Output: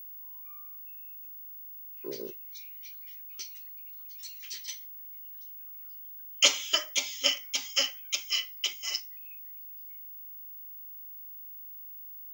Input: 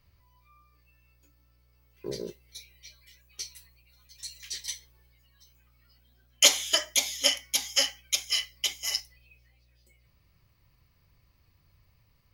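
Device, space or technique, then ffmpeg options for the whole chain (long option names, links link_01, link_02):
old television with a line whistle: -af "highpass=frequency=180:width=0.5412,highpass=frequency=180:width=1.3066,equalizer=frequency=190:width_type=q:width=4:gain=-8,equalizer=frequency=750:width_type=q:width=4:gain=-7,equalizer=frequency=1300:width_type=q:width=4:gain=5,equalizer=frequency=1800:width_type=q:width=4:gain=-4,equalizer=frequency=2700:width_type=q:width=4:gain=5,equalizer=frequency=3900:width_type=q:width=4:gain=-5,lowpass=frequency=6700:width=0.5412,lowpass=frequency=6700:width=1.3066,aeval=exprs='val(0)+0.01*sin(2*PI*15625*n/s)':channel_layout=same,volume=-2dB"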